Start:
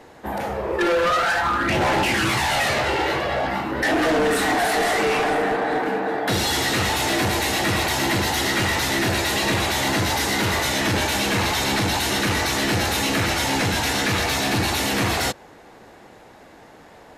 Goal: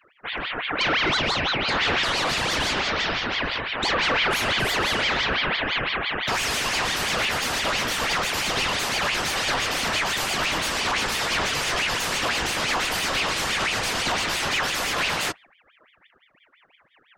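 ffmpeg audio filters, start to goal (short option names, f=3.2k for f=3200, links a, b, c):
-af "afftdn=nr=31:nf=-36,aeval=exprs='val(0)*sin(2*PI*1800*n/s+1800*0.55/5.9*sin(2*PI*5.9*n/s))':c=same"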